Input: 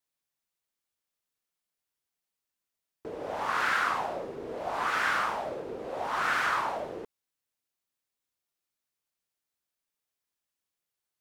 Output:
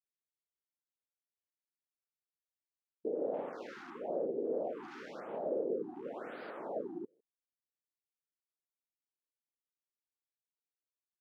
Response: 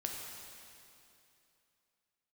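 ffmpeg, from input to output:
-filter_complex "[0:a]highpass=230,aecho=1:1:156:0.0841,afwtdn=0.01,acrossover=split=5800[s0][s1];[s0]alimiter=level_in=1.33:limit=0.0631:level=0:latency=1:release=43,volume=0.75[s2];[s2][s1]amix=inputs=2:normalize=0,firequalizer=gain_entry='entry(510,0);entry(1000,-22);entry(2600,-19)':delay=0.05:min_phase=1,afftfilt=real='re*(1-between(b*sr/1024,500*pow(7200/500,0.5+0.5*sin(2*PI*0.97*pts/sr))/1.41,500*pow(7200/500,0.5+0.5*sin(2*PI*0.97*pts/sr))*1.41))':imag='im*(1-between(b*sr/1024,500*pow(7200/500,0.5+0.5*sin(2*PI*0.97*pts/sr))/1.41,500*pow(7200/500,0.5+0.5*sin(2*PI*0.97*pts/sr))*1.41))':win_size=1024:overlap=0.75,volume=1.68"

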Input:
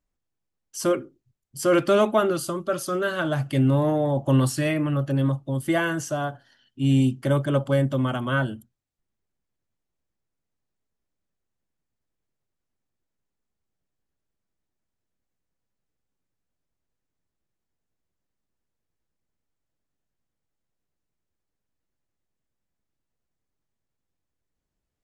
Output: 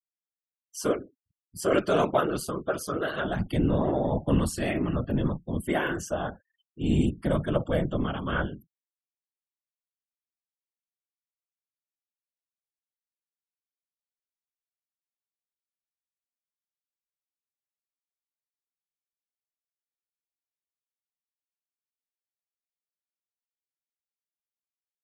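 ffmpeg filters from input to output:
-af "afftfilt=real='hypot(re,im)*cos(2*PI*random(0))':imag='hypot(re,im)*sin(2*PI*random(1))':win_size=512:overlap=0.75,afftfilt=real='re*gte(hypot(re,im),0.00316)':imag='im*gte(hypot(re,im),0.00316)':win_size=1024:overlap=0.75,tremolo=f=150:d=0.333,volume=1.5"

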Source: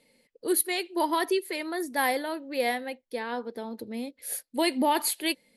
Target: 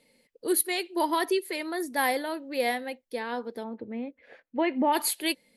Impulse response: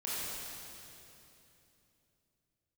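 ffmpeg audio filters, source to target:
-filter_complex "[0:a]asplit=3[s0][s1][s2];[s0]afade=t=out:st=3.63:d=0.02[s3];[s1]lowpass=f=2400:w=0.5412,lowpass=f=2400:w=1.3066,afade=t=in:st=3.63:d=0.02,afade=t=out:st=4.92:d=0.02[s4];[s2]afade=t=in:st=4.92:d=0.02[s5];[s3][s4][s5]amix=inputs=3:normalize=0"

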